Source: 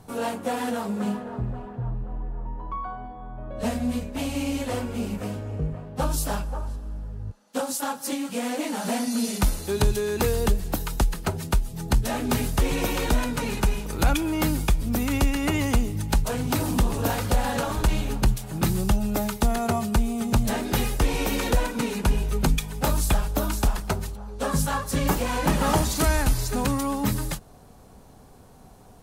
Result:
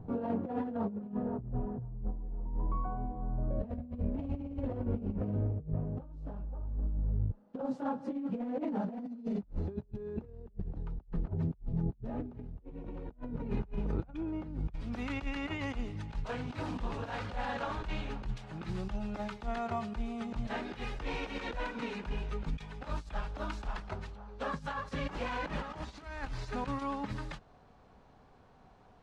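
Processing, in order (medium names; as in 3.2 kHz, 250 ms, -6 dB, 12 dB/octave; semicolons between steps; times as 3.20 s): tilt shelf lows +7.5 dB, about 900 Hz, from 13.50 s lows +3 dB, from 14.72 s lows -8.5 dB; compressor with a negative ratio -26 dBFS, ratio -0.5; tape spacing loss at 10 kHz 40 dB; trim -7.5 dB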